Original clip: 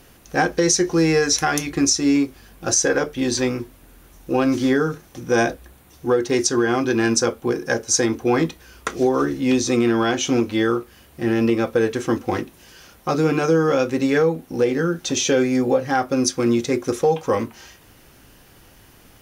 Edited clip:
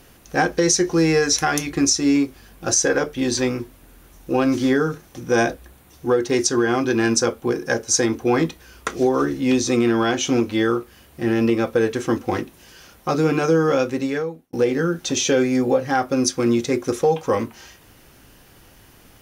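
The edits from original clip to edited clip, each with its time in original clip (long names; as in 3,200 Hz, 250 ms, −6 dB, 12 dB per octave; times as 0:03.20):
0:13.78–0:14.53: fade out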